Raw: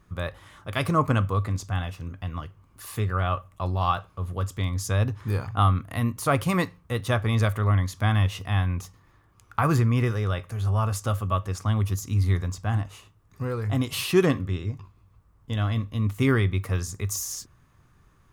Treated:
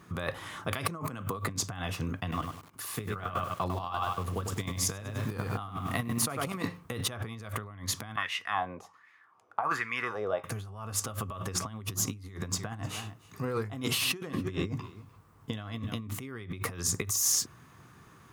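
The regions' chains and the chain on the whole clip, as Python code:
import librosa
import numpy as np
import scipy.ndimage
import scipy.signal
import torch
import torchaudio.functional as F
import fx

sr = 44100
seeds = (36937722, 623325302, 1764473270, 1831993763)

y = fx.chain(x, sr, fx.highpass(hz=100.0, slope=24),
    fx.high_shelf(hz=11000.0, db=11.0), at=(1.02, 1.49))
y = fx.chain(y, sr, fx.highpass(hz=48.0, slope=24),
    fx.level_steps(step_db=12),
    fx.echo_crushed(ms=100, feedback_pct=35, bits=9, wet_db=-6), at=(2.2, 6.64))
y = fx.chain(y, sr, fx.high_shelf(hz=4500.0, db=12.0),
    fx.wah_lfo(hz=1.3, low_hz=560.0, high_hz=2100.0, q=3.4), at=(8.16, 10.44))
y = fx.chain(y, sr, fx.hum_notches(base_hz=60, count=6),
    fx.echo_single(ms=300, db=-22.5), at=(11.01, 16.19))
y = fx.over_compress(y, sr, threshold_db=-34.0, ratio=-1.0)
y = scipy.signal.sosfilt(scipy.signal.butter(2, 140.0, 'highpass', fs=sr, output='sos'), y)
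y = fx.notch(y, sr, hz=570.0, q=12.0)
y = F.gain(torch.from_numpy(y), 2.0).numpy()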